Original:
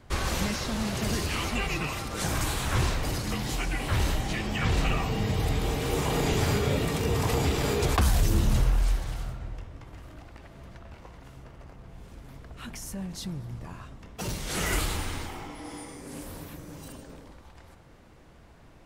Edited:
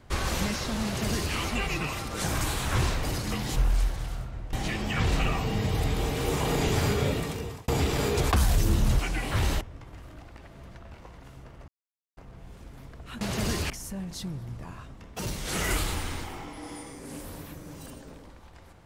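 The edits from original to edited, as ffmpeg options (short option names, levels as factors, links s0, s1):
-filter_complex "[0:a]asplit=9[s0][s1][s2][s3][s4][s5][s6][s7][s8];[s0]atrim=end=3.562[s9];[s1]atrim=start=8.638:end=9.612[s10];[s2]atrim=start=4.178:end=7.33,asetpts=PTS-STARTPTS,afade=t=out:st=2.522:d=0.63[s11];[s3]atrim=start=7.33:end=8.642,asetpts=PTS-STARTPTS,afade=t=in:d=0.004:c=hsin[s12];[s4]atrim=start=3.558:end=4.182[s13];[s5]atrim=start=9.608:end=11.68,asetpts=PTS-STARTPTS,afade=t=out:st=2.068:d=0.004:c=hsin,apad=pad_dur=0.49[s14];[s6]atrim=start=11.68:end=12.722,asetpts=PTS-STARTPTS,afade=t=in:d=0.004:c=hsin[s15];[s7]atrim=start=0.848:end=1.342[s16];[s8]atrim=start=12.718[s17];[s9][s10]acrossfade=d=0.004:c1=hsin:c2=hsin[s18];[s11][s12]concat=n=2:v=0:a=1[s19];[s18][s19]acrossfade=d=0.004:c1=hsin:c2=hsin[s20];[s20][s13]acrossfade=d=0.004:c1=hsin:c2=hsin[s21];[s14][s15]concat=n=2:v=0:a=1[s22];[s21][s22]acrossfade=d=0.004:c1=hsin:c2=hsin[s23];[s23][s16]acrossfade=d=0.004:c1=hsin:c2=hsin[s24];[s24][s17]acrossfade=d=0.004:c1=hsin:c2=hsin"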